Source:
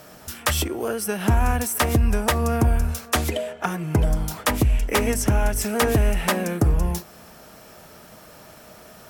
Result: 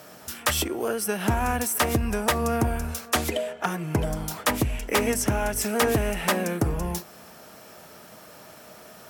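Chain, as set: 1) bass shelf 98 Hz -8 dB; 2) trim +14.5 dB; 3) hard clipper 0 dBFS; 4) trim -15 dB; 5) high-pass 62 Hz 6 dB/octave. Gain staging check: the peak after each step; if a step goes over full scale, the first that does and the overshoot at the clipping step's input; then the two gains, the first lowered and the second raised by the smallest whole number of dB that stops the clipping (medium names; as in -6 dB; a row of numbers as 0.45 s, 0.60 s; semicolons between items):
-9.5 dBFS, +5.0 dBFS, 0.0 dBFS, -15.0 dBFS, -12.5 dBFS; step 2, 5.0 dB; step 2 +9.5 dB, step 4 -10 dB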